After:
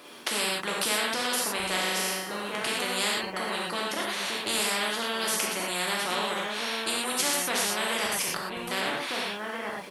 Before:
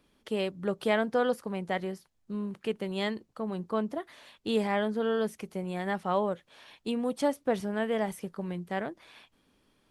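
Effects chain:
Bessel high-pass filter 460 Hz, order 2
0:01.56–0:02.32: flutter between parallel walls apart 6.4 metres, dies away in 0.82 s
0:08.06–0:08.57: compressor whose output falls as the input rises −54 dBFS, ratio −1
slap from a distant wall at 280 metres, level −10 dB
reverb whose tail is shaped and stops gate 140 ms flat, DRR −3.5 dB
every bin compressed towards the loudest bin 4 to 1

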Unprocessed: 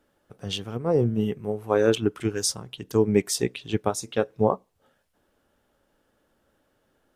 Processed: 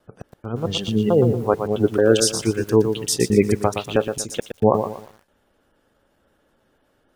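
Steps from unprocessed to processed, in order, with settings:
slices reordered back to front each 220 ms, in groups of 2
gate on every frequency bin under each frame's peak −30 dB strong
feedback echo at a low word length 118 ms, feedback 35%, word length 8 bits, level −7.5 dB
level +5 dB

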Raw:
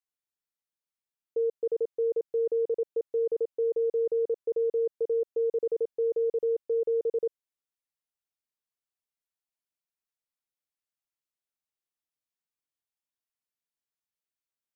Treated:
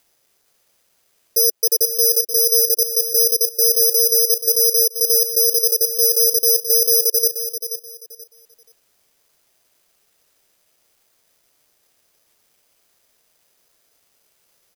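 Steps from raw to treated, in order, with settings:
flat-topped bell 510 Hz +13 dB 1.2 octaves
upward compression, threshold −38 dBFS
repeating echo 481 ms, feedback 23%, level −10 dB
bad sample-rate conversion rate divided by 8×, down none, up zero stuff
level −10.5 dB

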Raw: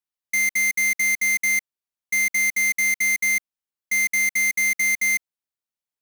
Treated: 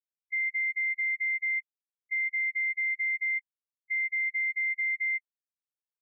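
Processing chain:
spectral peaks only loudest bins 2
brickwall limiter −25.5 dBFS, peak gain reduction 6.5 dB

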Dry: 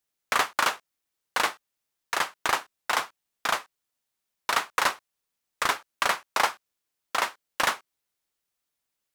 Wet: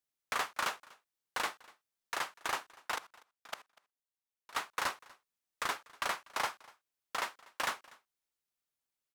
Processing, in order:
0:02.96–0:04.55: output level in coarse steps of 23 dB
soft clipping −16.5 dBFS, distortion −14 dB
on a send: single-tap delay 243 ms −23.5 dB
on the sum: level −8 dB

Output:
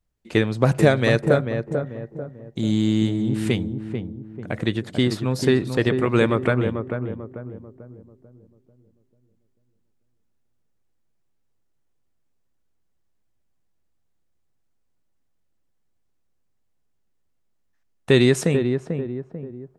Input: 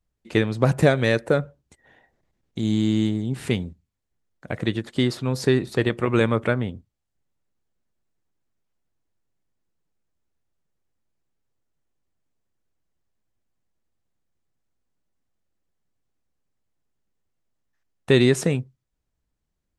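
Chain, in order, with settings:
feedback echo with a low-pass in the loop 442 ms, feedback 44%, low-pass 960 Hz, level −5.5 dB
level +1 dB

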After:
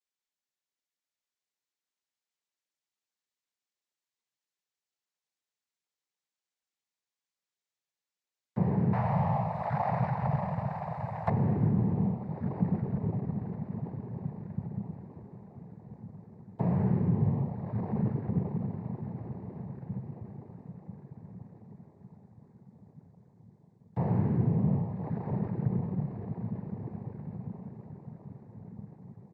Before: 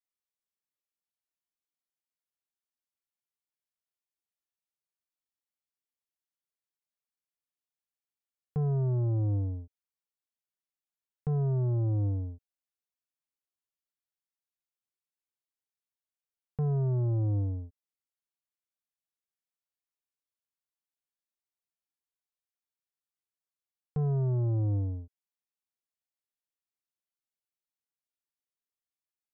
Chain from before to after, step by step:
comb filter 2.2 ms
feedback delay with all-pass diffusion 1,169 ms, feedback 48%, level −3 dB
cochlear-implant simulation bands 6
0:08.93–0:11.30: drawn EQ curve 150 Hz 0 dB, 350 Hz −20 dB, 640 Hz +15 dB

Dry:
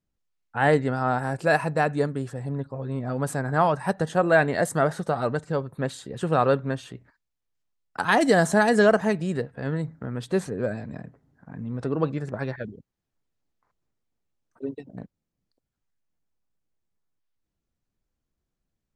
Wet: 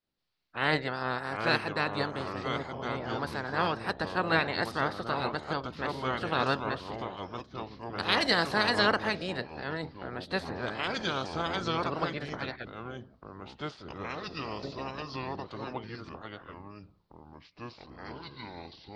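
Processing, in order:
ceiling on every frequency bin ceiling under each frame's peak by 19 dB
delay with pitch and tempo change per echo 603 ms, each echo −4 semitones, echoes 3, each echo −6 dB
high shelf with overshoot 5,700 Hz −8.5 dB, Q 3
level −8 dB

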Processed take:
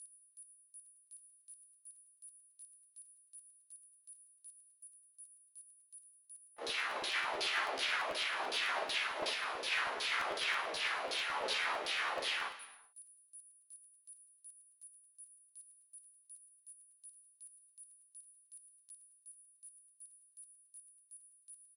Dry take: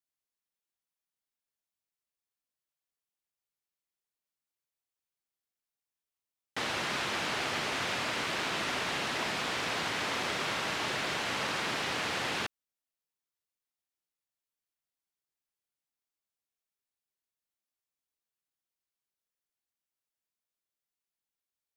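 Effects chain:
noise gate −31 dBFS, range −34 dB
high-pass filter 300 Hz 12 dB per octave
high-shelf EQ 4,600 Hz +6.5 dB
steady tone 9,800 Hz −46 dBFS
auto-filter band-pass saw down 2.7 Hz 390–4,600 Hz
ambience of single reflections 15 ms −5 dB, 57 ms −5 dB
convolution reverb, pre-delay 3 ms, DRR 9.5 dB
regular buffer underruns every 0.11 s, samples 512, repeat, from 0:00.84
level +9 dB

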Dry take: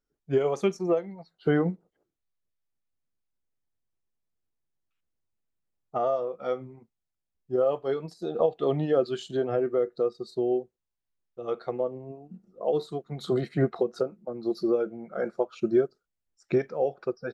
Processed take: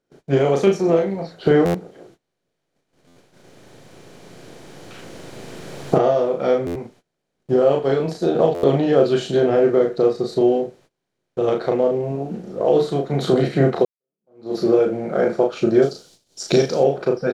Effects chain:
compressor on every frequency bin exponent 0.6
camcorder AGC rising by 5.4 dB per second
0:15.82–0:16.80: high shelf with overshoot 3,000 Hz +13 dB, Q 1.5
ambience of single reflections 36 ms −3.5 dB, 74 ms −17.5 dB
noise gate −52 dBFS, range −23 dB
parametric band 1,200 Hz −5.5 dB 0.23 octaves
0:13.85–0:14.56: fade in exponential
buffer that repeats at 0:01.65/0:03.07/0:06.66/0:08.54, samples 512, times 7
level +4.5 dB

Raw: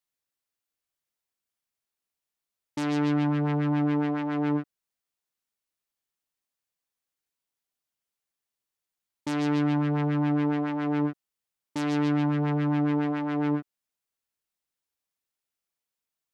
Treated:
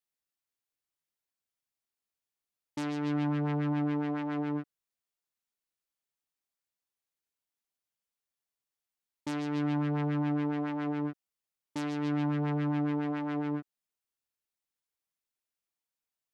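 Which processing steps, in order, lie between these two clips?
brickwall limiter −19 dBFS, peak gain reduction 4 dB
level −4.5 dB

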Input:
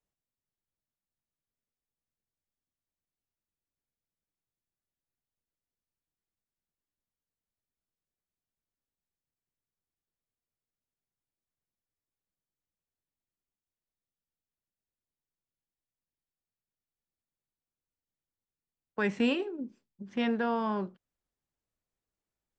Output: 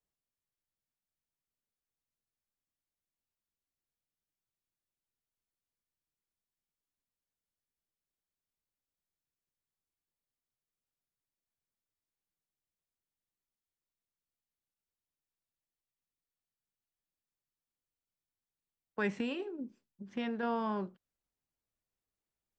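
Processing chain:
0:19.18–0:20.43: downward compressor, threshold −29 dBFS, peak gain reduction 6.5 dB
level −3.5 dB

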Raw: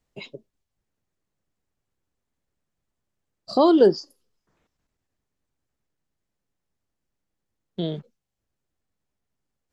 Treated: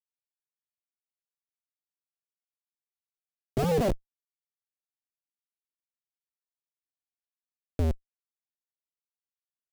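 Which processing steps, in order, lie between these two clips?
sub-harmonics by changed cycles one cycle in 2, inverted
mains-hum notches 50/100/150/200/250 Hz
comparator with hysteresis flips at −20.5 dBFS
low shelf with overshoot 780 Hz +8.5 dB, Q 1.5
level −3 dB

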